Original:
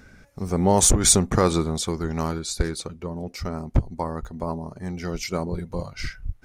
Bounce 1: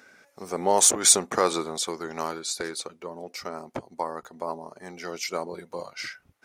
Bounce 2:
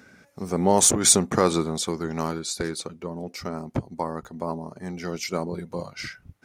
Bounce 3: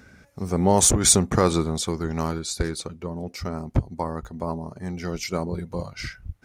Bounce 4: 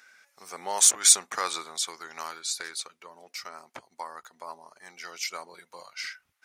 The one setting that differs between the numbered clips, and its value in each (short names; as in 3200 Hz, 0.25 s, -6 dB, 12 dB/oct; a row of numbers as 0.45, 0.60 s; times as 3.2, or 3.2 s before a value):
HPF, cutoff: 440, 170, 58, 1300 Hz